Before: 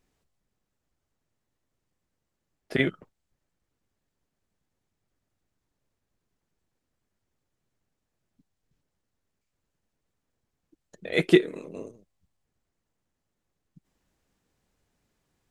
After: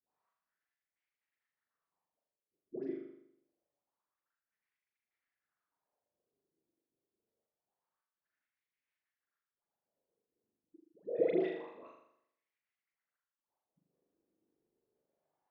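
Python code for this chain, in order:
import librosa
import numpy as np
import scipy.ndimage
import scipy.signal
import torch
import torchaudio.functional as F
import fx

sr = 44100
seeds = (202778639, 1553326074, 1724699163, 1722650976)

p1 = scipy.signal.sosfilt(scipy.signal.butter(6, 5800.0, 'lowpass', fs=sr, output='sos'), x)
p2 = fx.level_steps(p1, sr, step_db=20)
p3 = fx.wah_lfo(p2, sr, hz=0.26, low_hz=340.0, high_hz=2200.0, q=3.5)
p4 = fx.dispersion(p3, sr, late='highs', ms=120.0, hz=820.0)
p5 = p4 + fx.room_flutter(p4, sr, wall_m=6.9, rt60_s=0.74, dry=0)
y = p5 * librosa.db_to_amplitude(4.5)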